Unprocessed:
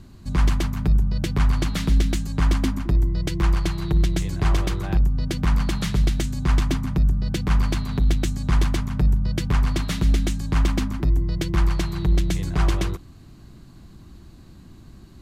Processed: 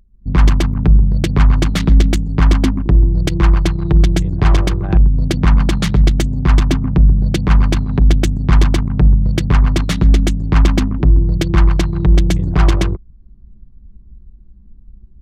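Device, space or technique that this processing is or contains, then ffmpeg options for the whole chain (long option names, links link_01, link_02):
voice memo with heavy noise removal: -af "anlmdn=100,dynaudnorm=framelen=130:gausssize=3:maxgain=12.5dB"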